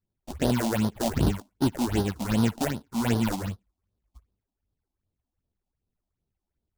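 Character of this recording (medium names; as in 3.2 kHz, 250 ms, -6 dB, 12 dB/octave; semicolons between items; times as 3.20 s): aliases and images of a low sample rate 1.2 kHz, jitter 20%; phasing stages 6, 2.6 Hz, lowest notch 110–2300 Hz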